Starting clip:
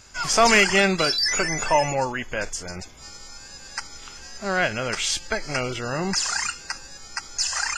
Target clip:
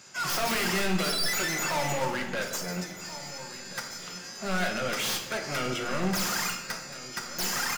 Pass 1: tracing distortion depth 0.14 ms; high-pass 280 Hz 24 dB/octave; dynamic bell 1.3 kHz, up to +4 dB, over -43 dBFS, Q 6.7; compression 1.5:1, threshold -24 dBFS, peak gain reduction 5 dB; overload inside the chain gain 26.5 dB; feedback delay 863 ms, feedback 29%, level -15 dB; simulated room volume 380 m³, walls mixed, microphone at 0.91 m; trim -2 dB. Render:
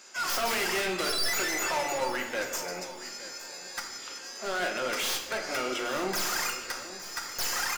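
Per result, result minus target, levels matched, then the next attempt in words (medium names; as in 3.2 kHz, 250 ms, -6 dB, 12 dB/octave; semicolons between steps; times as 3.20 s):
125 Hz band -12.5 dB; echo 516 ms early; compression: peak gain reduction +5 dB
tracing distortion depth 0.14 ms; high-pass 130 Hz 24 dB/octave; dynamic bell 1.3 kHz, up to +4 dB, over -43 dBFS, Q 6.7; compression 1.5:1, threshold -24 dBFS, peak gain reduction 5 dB; overload inside the chain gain 26.5 dB; feedback delay 863 ms, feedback 29%, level -15 dB; simulated room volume 380 m³, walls mixed, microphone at 0.91 m; trim -2 dB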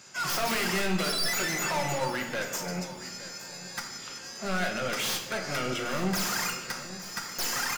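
echo 516 ms early; compression: peak gain reduction +5 dB
tracing distortion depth 0.14 ms; high-pass 130 Hz 24 dB/octave; dynamic bell 1.3 kHz, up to +4 dB, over -43 dBFS, Q 6.7; compression 1.5:1, threshold -24 dBFS, peak gain reduction 5 dB; overload inside the chain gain 26.5 dB; feedback delay 1379 ms, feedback 29%, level -15 dB; simulated room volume 380 m³, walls mixed, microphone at 0.91 m; trim -2 dB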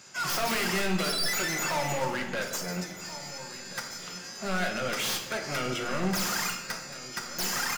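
compression: peak gain reduction +5 dB
tracing distortion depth 0.14 ms; high-pass 130 Hz 24 dB/octave; dynamic bell 1.3 kHz, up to +4 dB, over -43 dBFS, Q 6.7; overload inside the chain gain 26.5 dB; feedback delay 1379 ms, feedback 29%, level -15 dB; simulated room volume 380 m³, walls mixed, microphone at 0.91 m; trim -2 dB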